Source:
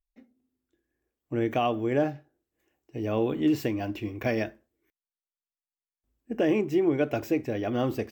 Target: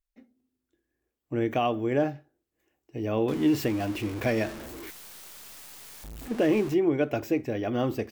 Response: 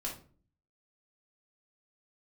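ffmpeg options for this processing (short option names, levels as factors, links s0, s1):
-filter_complex "[0:a]asettb=1/sr,asplit=3[s0][s1][s2];[s0]atrim=end=3.284[s3];[s1]atrim=start=3.28:end=6.74,asetpts=PTS-STARTPTS,afade=t=in:d=0.004:c=qsin,afade=t=out:st=3.456:d=0.004:c=qsin,aeval=exprs='val(0)+0.5*0.0188*sgn(val(0))':c=same[s4];[s2]atrim=start=6.736[s5];[s3][s4]acrossfade=d=0.004:c1=hsin:c2=qsin[s6];[s6][s5]acrossfade=d=0.004:c1=qsin:c2=hsin"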